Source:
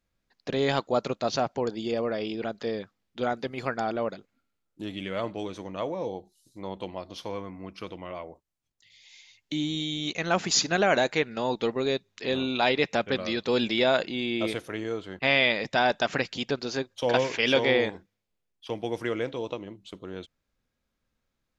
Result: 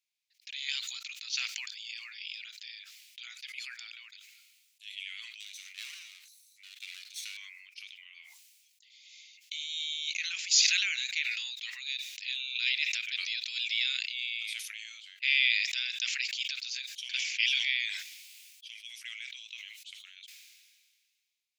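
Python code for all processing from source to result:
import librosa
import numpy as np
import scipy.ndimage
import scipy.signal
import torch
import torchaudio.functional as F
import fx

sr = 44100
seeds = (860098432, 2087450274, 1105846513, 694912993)

y = fx.chain(x, sr, fx.lower_of_two(delay_ms=0.49),
    fx.high_shelf(hz=4100.0, db=6.5), at=(5.4, 7.37))
y = scipy.signal.sosfilt(scipy.signal.ellip(4, 1.0, 80, 2300.0, 'highpass', fs=sr, output='sos'), y)
y = fx.sustainer(y, sr, db_per_s=33.0)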